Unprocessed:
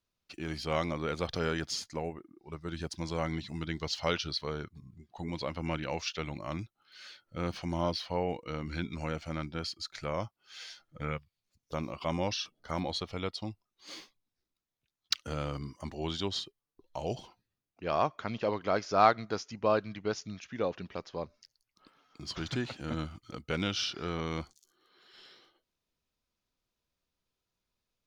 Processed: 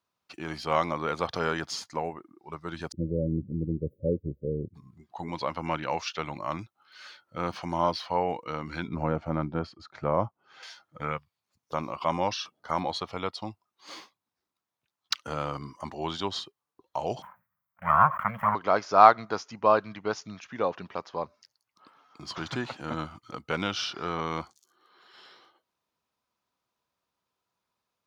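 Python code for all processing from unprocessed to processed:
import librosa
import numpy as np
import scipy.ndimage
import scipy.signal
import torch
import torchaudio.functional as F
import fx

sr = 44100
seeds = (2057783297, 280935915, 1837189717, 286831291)

y = fx.chain(x, sr, fx.brickwall_bandstop(low_hz=580.0, high_hz=14000.0),
    fx.tilt_eq(slope=-3.0), at=(2.92, 4.74))
y = fx.chain(y, sr, fx.lowpass(hz=2700.0, slope=6),
    fx.tilt_shelf(db=8.0, hz=1100.0), at=(8.88, 10.63))
y = fx.chain(y, sr, fx.lower_of_two(delay_ms=0.93),
    fx.curve_eq(hz=(110.0, 200.0, 330.0, 560.0, 800.0, 1600.0, 2300.0, 4300.0, 6200.0, 15000.0), db=(0, 4, -30, 5, -4, 9, -2, -27, -21, 13)),
    fx.sustainer(db_per_s=150.0), at=(17.22, 18.55))
y = scipy.signal.sosfilt(scipy.signal.butter(2, 100.0, 'highpass', fs=sr, output='sos'), y)
y = fx.peak_eq(y, sr, hz=990.0, db=10.5, octaves=1.3)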